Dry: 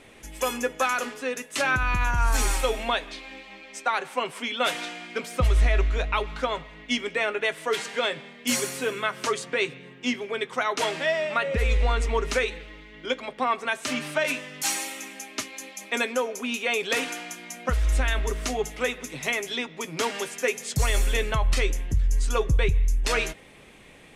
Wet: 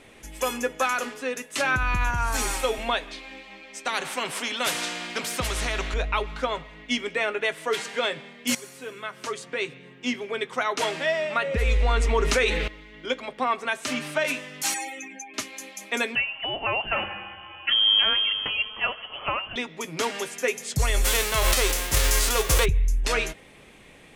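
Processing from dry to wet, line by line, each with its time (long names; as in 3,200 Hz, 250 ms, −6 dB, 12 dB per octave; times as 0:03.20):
0:02.10–0:02.78: high-pass filter 61 Hz
0:03.85–0:05.94: every bin compressed towards the loudest bin 2 to 1
0:08.55–0:10.30: fade in, from −15 dB
0:11.67–0:12.68: envelope flattener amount 70%
0:14.74–0:15.34: expanding power law on the bin magnitudes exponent 2.4
0:16.15–0:19.56: voice inversion scrambler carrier 3,200 Hz
0:21.04–0:22.64: spectral envelope flattened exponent 0.3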